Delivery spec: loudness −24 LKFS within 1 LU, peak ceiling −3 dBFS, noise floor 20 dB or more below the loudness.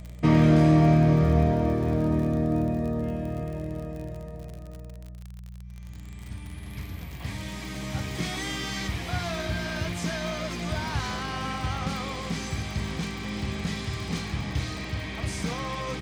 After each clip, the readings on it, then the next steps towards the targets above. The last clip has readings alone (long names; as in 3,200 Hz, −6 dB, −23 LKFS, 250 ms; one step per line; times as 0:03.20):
crackle rate 51 per second; mains hum 60 Hz; hum harmonics up to 180 Hz; level of the hum −39 dBFS; integrated loudness −27.0 LKFS; sample peak −8.5 dBFS; target loudness −24.0 LKFS
→ click removal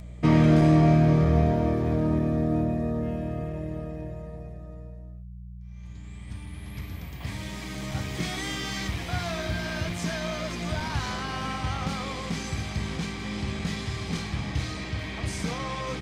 crackle rate 0.31 per second; mains hum 60 Hz; hum harmonics up to 180 Hz; level of the hum −39 dBFS
→ hum removal 60 Hz, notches 3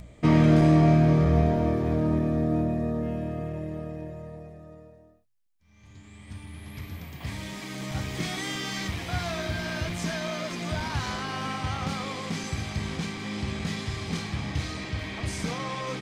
mains hum none found; integrated loudness −27.5 LKFS; sample peak −8.5 dBFS; target loudness −24.0 LKFS
→ level +3.5 dB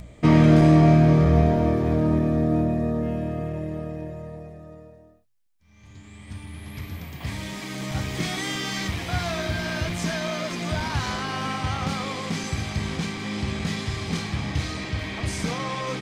integrated loudness −24.0 LKFS; sample peak −5.0 dBFS; background noise floor −51 dBFS